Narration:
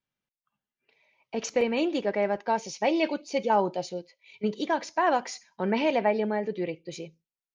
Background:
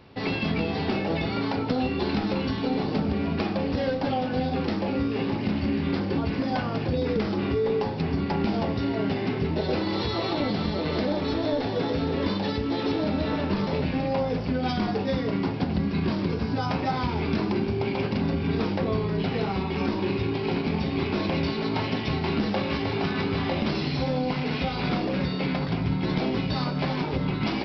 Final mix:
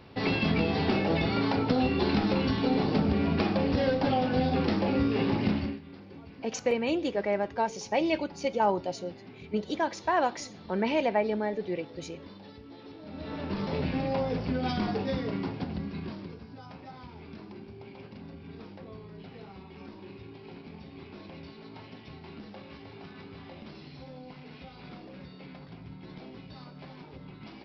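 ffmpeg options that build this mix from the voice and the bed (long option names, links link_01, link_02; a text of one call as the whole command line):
ffmpeg -i stem1.wav -i stem2.wav -filter_complex "[0:a]adelay=5100,volume=-2dB[link_01];[1:a]volume=17.5dB,afade=type=out:start_time=5.48:duration=0.32:silence=0.0891251,afade=type=in:start_time=13.03:duration=0.82:silence=0.133352,afade=type=out:start_time=14.91:duration=1.54:silence=0.158489[link_02];[link_01][link_02]amix=inputs=2:normalize=0" out.wav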